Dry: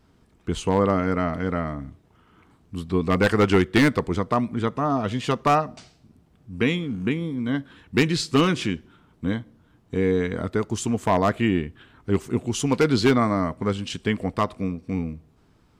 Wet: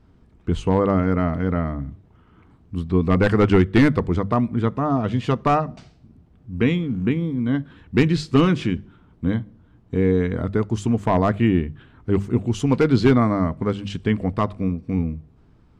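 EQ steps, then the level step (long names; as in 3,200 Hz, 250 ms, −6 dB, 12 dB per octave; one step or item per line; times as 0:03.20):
low-pass filter 2,800 Hz 6 dB per octave
low-shelf EQ 200 Hz +9.5 dB
mains-hum notches 50/100/150/200 Hz
0.0 dB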